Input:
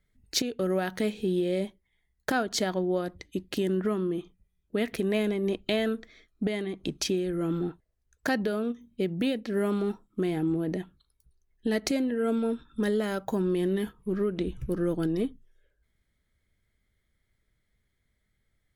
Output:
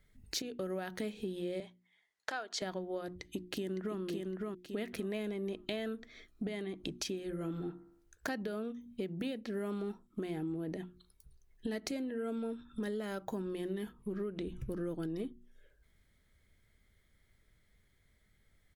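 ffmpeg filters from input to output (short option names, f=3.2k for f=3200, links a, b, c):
-filter_complex "[0:a]asettb=1/sr,asplit=3[a][b][c];[a]atrim=end=1.604[d];[b]atrim=start=1.6:end=2.62,asetpts=PTS-STARTPTS,afade=t=in:d=0.004:c=qsin,afade=t=out:st=1.016:d=0.004:c=qsin,highpass=620,lowpass=6.9k[e];[c]atrim=start=2.616[f];[d][e]acrossfade=d=0.004:c1=hsin:c2=qsin[g];[g][f]acrossfade=d=0.004:c1=qsin:c2=hsin,asplit=2[h][i];[i]afade=t=in:st=3.19:d=0.01,afade=t=out:st=3.98:d=0.01,aecho=0:1:560|1120|1680:0.630957|0.126191|0.0252383[j];[h][j]amix=inputs=2:normalize=0,asettb=1/sr,asplit=3[k][l][m];[k]atrim=end=7.184[n];[l]atrim=start=7.18:end=8.28,asetpts=PTS-STARTPTS,afade=t=in:d=0.004:c=qsin,afade=t=out:st=1.096:d=0.004:c=qsin,bandreject=f=68.4:t=h:w=4,bandreject=f=136.8:t=h:w=4,bandreject=f=205.2:t=h:w=4,bandreject=f=273.6:t=h:w=4,bandreject=f=342:t=h:w=4,bandreject=f=410.4:t=h:w=4,bandreject=f=478.8:t=h:w=4,bandreject=f=547.2:t=h:w=4,bandreject=f=615.6:t=h:w=4,bandreject=f=684:t=h:w=4,bandreject=f=752.4:t=h:w=4,bandreject=f=820.8:t=h:w=4,bandreject=f=889.2:t=h:w=4,bandreject=f=957.6:t=h:w=4,bandreject=f=1.026k:t=h:w=4,bandreject=f=1.0944k:t=h:w=4,bandreject=f=1.1628k:t=h:w=4,bandreject=f=1.2312k:t=h:w=4,bandreject=f=1.2996k:t=h:w=4,bandreject=f=1.368k:t=h:w=4,bandreject=f=1.4364k:t=h:w=4,bandreject=f=1.5048k:t=h:w=4,bandreject=f=1.5732k:t=h:w=4,bandreject=f=1.6416k:t=h:w=4,bandreject=f=1.71k:t=h:w=4,bandreject=f=1.7784k:t=h:w=4,bandreject=f=1.8468k:t=h:w=4[o];[m]atrim=start=8.276[p];[n][o]acrossfade=d=0.004:c1=hsin:c2=qsin[q];[q][p]acrossfade=d=0.004:c1=qsin:c2=hsin,bandreject=f=60:t=h:w=6,bandreject=f=120:t=h:w=6,bandreject=f=180:t=h:w=6,bandreject=f=240:t=h:w=6,bandreject=f=300:t=h:w=6,bandreject=f=360:t=h:w=6,acompressor=threshold=-46dB:ratio=3,volume=5dB"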